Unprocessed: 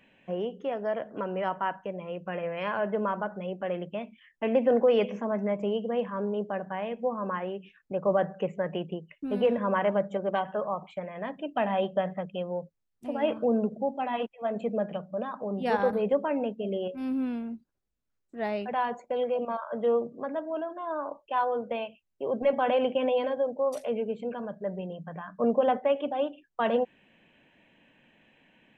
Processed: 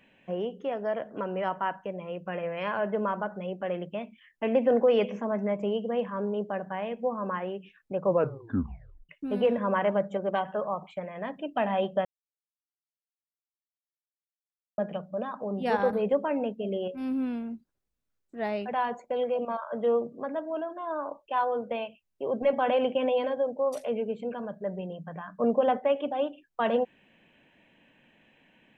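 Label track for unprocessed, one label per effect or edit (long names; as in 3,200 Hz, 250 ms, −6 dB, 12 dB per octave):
8.050000	8.050000	tape stop 1.04 s
12.050000	14.780000	silence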